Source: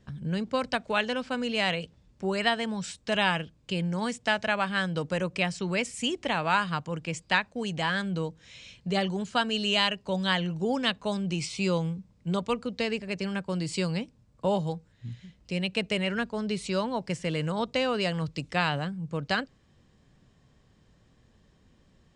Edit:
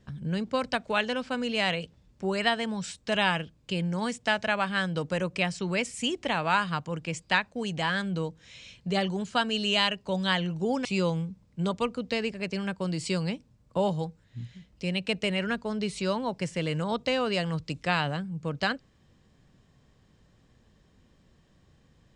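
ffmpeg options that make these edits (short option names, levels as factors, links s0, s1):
-filter_complex "[0:a]asplit=2[s0][s1];[s0]atrim=end=10.852[s2];[s1]atrim=start=11.528[s3];[s2][s3]acrossfade=d=0.004:c1=hsin:c2=hsin"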